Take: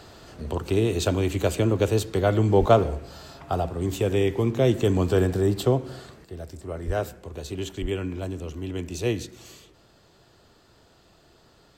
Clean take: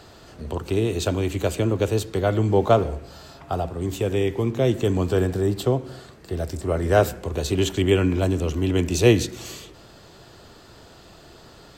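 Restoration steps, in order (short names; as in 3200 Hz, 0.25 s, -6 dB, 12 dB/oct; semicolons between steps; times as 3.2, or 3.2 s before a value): 2.59–2.71 HPF 140 Hz 24 dB/oct; 6.86–6.98 HPF 140 Hz 24 dB/oct; 7.81–7.93 HPF 140 Hz 24 dB/oct; gain 0 dB, from 6.24 s +10 dB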